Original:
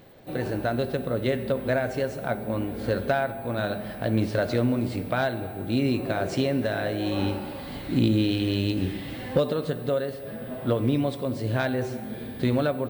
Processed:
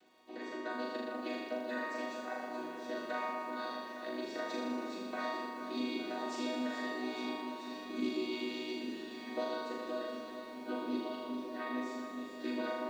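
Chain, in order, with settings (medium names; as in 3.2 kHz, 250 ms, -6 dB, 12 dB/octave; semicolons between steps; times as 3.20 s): vocoder on a held chord major triad, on B3; tilt EQ +4 dB/octave; crackle 200 per s -57 dBFS; 11.05–11.75 s: distance through air 210 m; on a send: flutter echo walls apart 6.8 m, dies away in 1.4 s; on the sum: bit-crushed delay 429 ms, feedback 80%, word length 9-bit, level -10 dB; trim -8 dB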